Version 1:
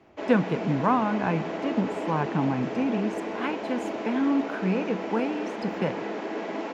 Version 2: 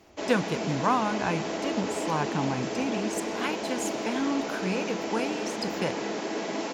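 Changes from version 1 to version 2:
speech: add low-shelf EQ 280 Hz −11 dB
master: remove three-way crossover with the lows and the highs turned down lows −17 dB, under 150 Hz, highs −17 dB, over 3,000 Hz

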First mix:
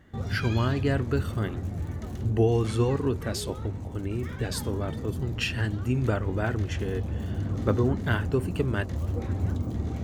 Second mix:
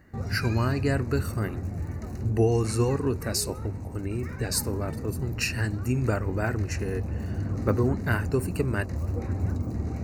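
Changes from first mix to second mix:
speech: add high-shelf EQ 4,500 Hz +11 dB
master: add Butterworth band-reject 3,300 Hz, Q 2.6

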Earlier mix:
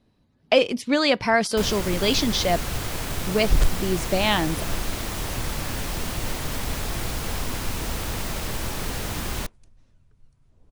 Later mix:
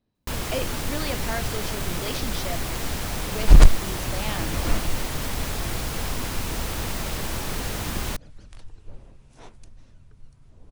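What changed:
speech −12.0 dB
first sound: entry −1.30 s
second sound +8.5 dB

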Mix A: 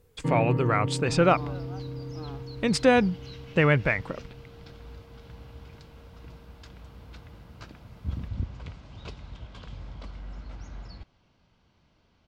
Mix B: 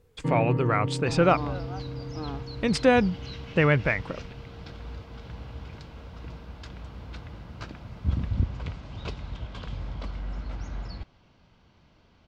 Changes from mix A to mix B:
second sound +6.0 dB
master: add high-shelf EQ 8,000 Hz −8.5 dB

